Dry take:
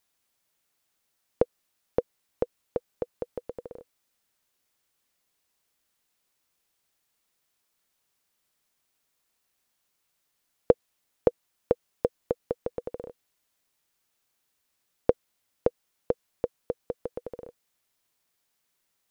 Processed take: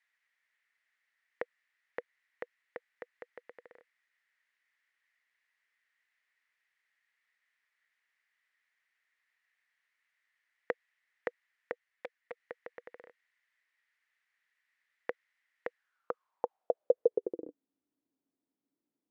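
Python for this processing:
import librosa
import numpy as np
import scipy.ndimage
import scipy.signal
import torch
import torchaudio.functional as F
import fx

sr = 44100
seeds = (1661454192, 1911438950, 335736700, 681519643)

y = fx.filter_sweep_bandpass(x, sr, from_hz=1900.0, to_hz=280.0, start_s=15.71, end_s=17.54, q=6.9)
y = fx.env_flanger(y, sr, rest_ms=9.6, full_db=-40.5, at=(11.72, 12.37))
y = y * librosa.db_to_amplitude(12.5)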